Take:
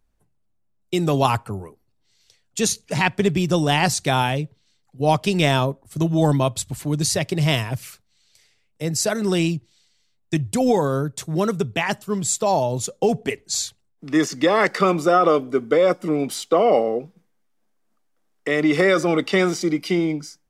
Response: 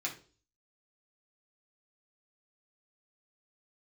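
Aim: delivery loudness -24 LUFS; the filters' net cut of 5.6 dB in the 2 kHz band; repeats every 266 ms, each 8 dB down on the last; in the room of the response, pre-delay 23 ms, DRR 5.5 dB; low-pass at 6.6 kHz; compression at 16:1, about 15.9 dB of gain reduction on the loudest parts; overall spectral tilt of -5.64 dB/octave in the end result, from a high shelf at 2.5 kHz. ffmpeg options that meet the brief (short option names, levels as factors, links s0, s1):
-filter_complex "[0:a]lowpass=6600,equalizer=f=2000:t=o:g=-3,highshelf=f=2500:g=-8,acompressor=threshold=0.0355:ratio=16,aecho=1:1:266|532|798|1064|1330:0.398|0.159|0.0637|0.0255|0.0102,asplit=2[s0][s1];[1:a]atrim=start_sample=2205,adelay=23[s2];[s1][s2]afir=irnorm=-1:irlink=0,volume=0.376[s3];[s0][s3]amix=inputs=2:normalize=0,volume=2.99"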